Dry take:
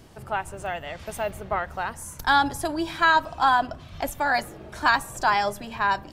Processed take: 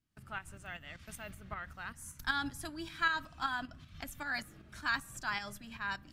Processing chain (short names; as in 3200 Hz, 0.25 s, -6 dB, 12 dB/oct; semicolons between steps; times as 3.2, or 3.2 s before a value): tremolo saw up 5.2 Hz, depth 55%; gate with hold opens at -36 dBFS; band shelf 600 Hz -12 dB; gain -8 dB